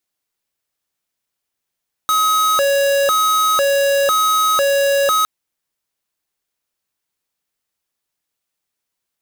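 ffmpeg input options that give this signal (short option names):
-f lavfi -i "aevalsrc='0.178*(2*lt(mod((914*t+356/1*(0.5-abs(mod(1*t,1)-0.5))),1),0.5)-1)':d=3.16:s=44100"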